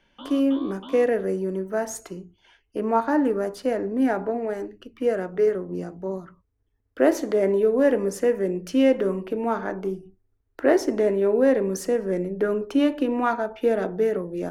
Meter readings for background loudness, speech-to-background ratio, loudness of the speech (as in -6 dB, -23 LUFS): -41.5 LUFS, 17.5 dB, -24.0 LUFS